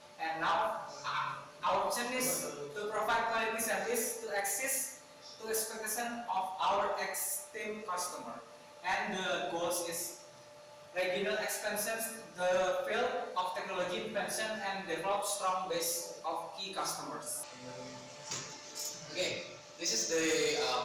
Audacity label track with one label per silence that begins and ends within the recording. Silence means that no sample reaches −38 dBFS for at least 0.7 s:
10.120000	10.960000	silence